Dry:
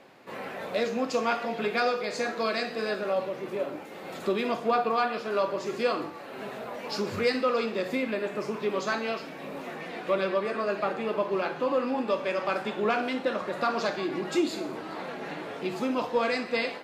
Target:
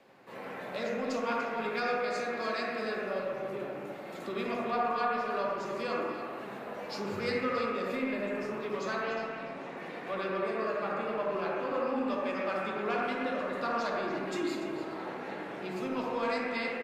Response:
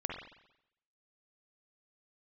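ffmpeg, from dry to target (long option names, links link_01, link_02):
-filter_complex "[0:a]asettb=1/sr,asplit=3[link_01][link_02][link_03];[link_01]atrim=end=9.034[link_04];[link_02]atrim=start=9.03:end=9.77,asetpts=PTS-STARTPTS,afade=type=in:duration=0.004:curve=qsin,afade=type=out:start_time=0.736:duration=0.004:curve=qsin,lowpass=7300[link_05];[link_03]atrim=start=9.766[link_06];[link_04][link_05]acrossfade=duration=0.004:curve1=hsin:curve2=qsin[link_07];[link_07][link_06]acrossfade=duration=0.004:curve1=qsin:curve2=hsin,acrossover=split=290|650|4300[link_08][link_09][link_10][link_11];[link_09]asoftclip=type=tanh:threshold=-35dB[link_12];[link_08][link_12][link_10][link_11]amix=inputs=4:normalize=0,asplit=2[link_13][link_14];[link_14]adelay=291.5,volume=-8dB,highshelf=frequency=4000:gain=-6.56[link_15];[link_13][link_15]amix=inputs=2:normalize=0[link_16];[1:a]atrim=start_sample=2205,asetrate=30870,aresample=44100[link_17];[link_16][link_17]afir=irnorm=-1:irlink=0,volume=-8dB"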